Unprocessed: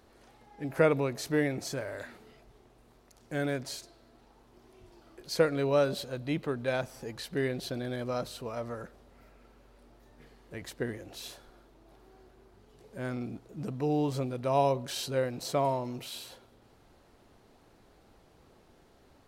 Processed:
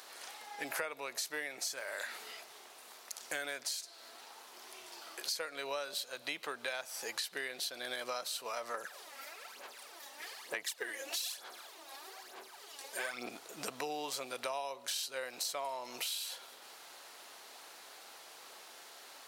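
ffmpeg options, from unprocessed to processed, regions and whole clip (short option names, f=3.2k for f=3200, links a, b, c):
-filter_complex "[0:a]asettb=1/sr,asplit=3[a][b][c];[a]atrim=end=8.744[d];[b]atrim=start=8.74:end=13.29,asetpts=PTS-STARTPTS,afade=t=in:d=0.004:c=qsin,afade=t=out:st=4.546:d=0.004:c=qsin,lowshelf=f=170:g=-10,bandreject=f=1.4k:w=19,aphaser=in_gain=1:out_gain=1:delay=3.7:decay=0.66:speed=1.1:type=sinusoidal[e];[c]atrim=start=13.286[f];[d][e]acrossfade=d=0.004:c1=hsin:c2=qsin[g];[g][f]acrossfade=d=0.004:c1=qsin:c2=hsin,highpass=800,highshelf=f=2.5k:g=10,acompressor=threshold=-46dB:ratio=10,volume=10dB"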